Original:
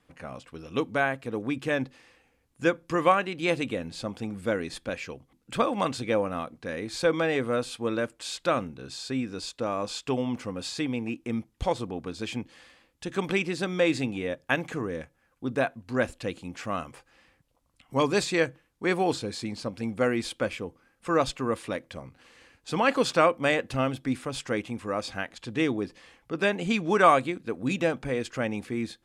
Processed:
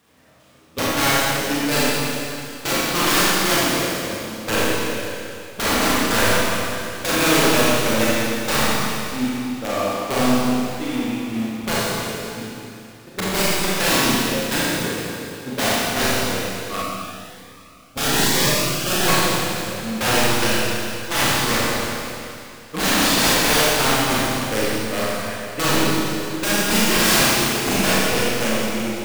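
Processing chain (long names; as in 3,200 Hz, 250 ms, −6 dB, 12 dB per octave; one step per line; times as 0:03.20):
converter with a step at zero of −24.5 dBFS
high-pass filter 48 Hz 24 dB per octave
noise gate −23 dBFS, range −32 dB
wrap-around overflow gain 19.5 dB
four-comb reverb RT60 2.7 s, combs from 28 ms, DRR −8.5 dB
0:16.82–0:19.08: phaser whose notches keep moving one way rising 1.1 Hz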